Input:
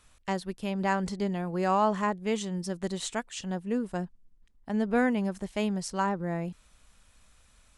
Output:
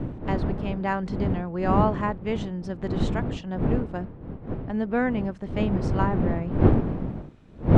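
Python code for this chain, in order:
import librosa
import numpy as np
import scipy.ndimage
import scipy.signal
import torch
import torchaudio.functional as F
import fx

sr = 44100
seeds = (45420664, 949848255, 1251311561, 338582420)

y = fx.dmg_wind(x, sr, seeds[0], corner_hz=240.0, level_db=-27.0)
y = scipy.signal.sosfilt(scipy.signal.butter(2, 3100.0, 'lowpass', fs=sr, output='sos'), y)
y = y * 10.0 ** (1.0 / 20.0)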